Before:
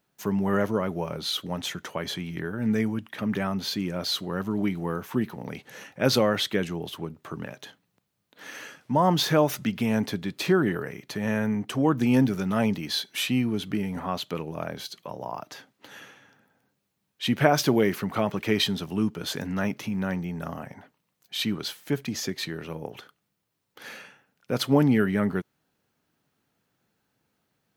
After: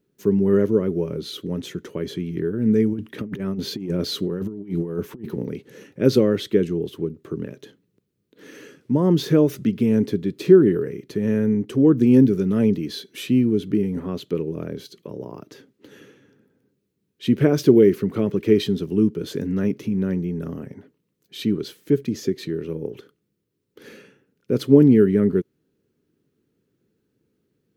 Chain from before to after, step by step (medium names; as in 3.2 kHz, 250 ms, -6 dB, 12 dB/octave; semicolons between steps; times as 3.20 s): resonant low shelf 550 Hz +10 dB, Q 3; 2.93–5.45 s: compressor with a negative ratio -20 dBFS, ratio -0.5; trim -5.5 dB